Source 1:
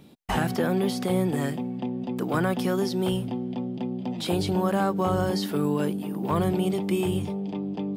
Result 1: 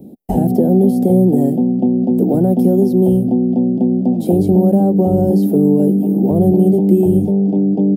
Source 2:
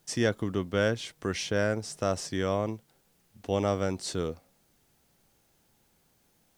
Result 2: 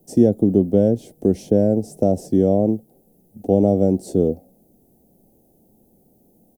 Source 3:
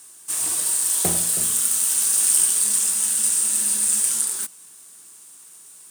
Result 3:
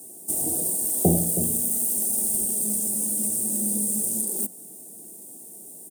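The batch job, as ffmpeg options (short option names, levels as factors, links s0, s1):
-filter_complex "[0:a]volume=5.01,asoftclip=hard,volume=0.2,acrossover=split=170[s0][s1];[s1]acompressor=threshold=0.0501:ratio=4[s2];[s0][s2]amix=inputs=2:normalize=0,firequalizer=gain_entry='entry(140,0);entry(200,9);entry(760,1);entry(1100,-28);entry(12000,0)':delay=0.05:min_phase=1,volume=2.82"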